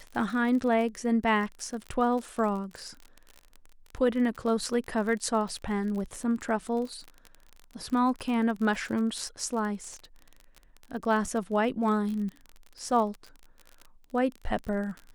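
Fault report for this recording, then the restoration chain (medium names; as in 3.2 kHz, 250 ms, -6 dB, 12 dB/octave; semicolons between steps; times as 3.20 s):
crackle 36 per s -34 dBFS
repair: de-click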